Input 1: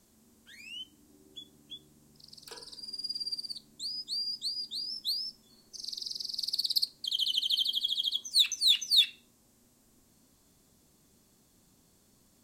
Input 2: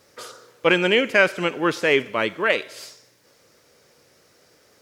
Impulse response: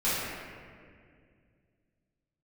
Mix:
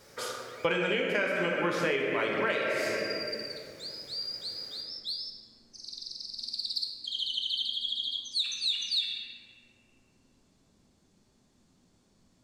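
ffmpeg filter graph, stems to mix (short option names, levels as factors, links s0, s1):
-filter_complex "[0:a]lowpass=6000,volume=0.596,asplit=2[s0][s1];[s1]volume=0.282[s2];[1:a]bandreject=f=2700:w=29,volume=0.841,asplit=2[s3][s4];[s4]volume=0.335[s5];[2:a]atrim=start_sample=2205[s6];[s2][s5]amix=inputs=2:normalize=0[s7];[s7][s6]afir=irnorm=-1:irlink=0[s8];[s0][s3][s8]amix=inputs=3:normalize=0,acompressor=threshold=0.0562:ratio=16"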